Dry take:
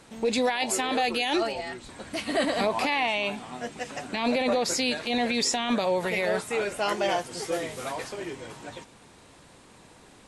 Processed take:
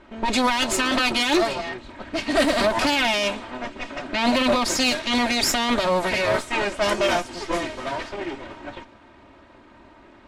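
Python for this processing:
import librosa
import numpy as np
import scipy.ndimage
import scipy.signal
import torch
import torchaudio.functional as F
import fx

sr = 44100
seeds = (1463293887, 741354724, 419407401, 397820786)

y = fx.lower_of_two(x, sr, delay_ms=3.2)
y = fx.env_lowpass(y, sr, base_hz=2000.0, full_db=-22.5)
y = y * 10.0 ** (6.5 / 20.0)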